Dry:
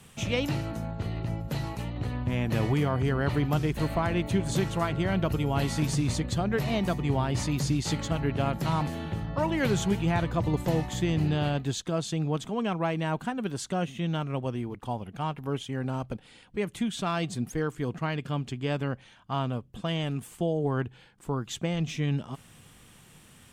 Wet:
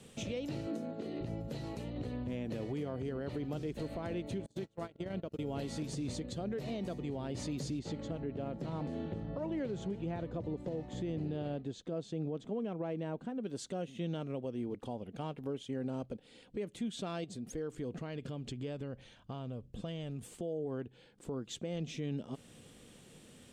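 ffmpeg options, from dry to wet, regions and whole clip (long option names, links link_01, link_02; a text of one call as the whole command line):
ffmpeg -i in.wav -filter_complex "[0:a]asettb=1/sr,asplit=3[link_01][link_02][link_03];[link_01]atrim=end=0.674[link_04];[link_02]atrim=start=0.67:end=1.21,asetpts=PTS-STARTPTS,afade=type=in:duration=0.004:curve=qsin,afade=type=out:start_time=0.536:duration=0.004:curve=qsin,highpass=frequency=270:width_type=q:width=1.7,bandreject=frequency=900:width=10[link_05];[link_03]atrim=start=1.206[link_06];[link_04][link_05]acrossfade=duration=0.004:curve1=hsin:curve2=qsin[link_07];[link_07][link_06]acrossfade=duration=0.004:curve1=qsin:curve2=hsin,asettb=1/sr,asplit=3[link_08][link_09][link_10];[link_08]atrim=end=4.464[link_11];[link_09]atrim=start=4.46:end=5.39,asetpts=PTS-STARTPTS,afade=type=in:duration=0.004:curve=qsin,afade=type=out:start_time=0.926:duration=0.004:curve=qsin,bandreject=frequency=50:width_type=h:width=6,bandreject=frequency=100:width_type=h:width=6,bandreject=frequency=150:width_type=h:width=6,agate=range=-35dB:threshold=-27dB:ratio=16:release=100:detection=peak,acompressor=threshold=-33dB:ratio=2:attack=3.2:release=140:knee=1:detection=peak[link_12];[link_10]atrim=start=5.386[link_13];[link_11][link_12]acrossfade=duration=0.004:curve1=hsin:curve2=qsin[link_14];[link_14][link_13]acrossfade=duration=0.004:curve1=qsin:curve2=hsin,asettb=1/sr,asplit=3[link_15][link_16][link_17];[link_15]atrim=end=7.794[link_18];[link_16]atrim=start=7.79:end=13.45,asetpts=PTS-STARTPTS,afade=type=in:duration=0.004:curve=qsin,afade=type=out:start_time=5.656:duration=0.004:curve=qsin,lowpass=9900,highshelf=frequency=2600:gain=-10.5[link_19];[link_17]atrim=start=13.446[link_20];[link_18][link_19]acrossfade=duration=0.004:curve1=hsin:curve2=qsin[link_21];[link_21][link_20]acrossfade=duration=0.004:curve1=qsin:curve2=hsin,asettb=1/sr,asplit=3[link_22][link_23][link_24];[link_22]atrim=end=17.244[link_25];[link_23]atrim=start=17.24:end=20.28,asetpts=PTS-STARTPTS,afade=type=in:duration=0.004:curve=qsin,afade=type=out:start_time=3.036:duration=0.004:curve=qsin,asubboost=boost=5:cutoff=130,acompressor=threshold=-34dB:ratio=10:attack=3.2:release=140:knee=1:detection=peak[link_26];[link_24]atrim=start=20.276[link_27];[link_25][link_26]acrossfade=duration=0.004:curve1=hsin:curve2=qsin[link_28];[link_28][link_27]acrossfade=duration=0.004:curve1=qsin:curve2=hsin,equalizer=frequency=250:width_type=o:width=1:gain=7,equalizer=frequency=500:width_type=o:width=1:gain=11,equalizer=frequency=1000:width_type=o:width=1:gain=-4,equalizer=frequency=4000:width_type=o:width=1:gain=5,equalizer=frequency=8000:width_type=o:width=1:gain=6,alimiter=limit=-22.5dB:level=0:latency=1:release=358,highshelf=frequency=7500:gain=-7,volume=-7dB" out.wav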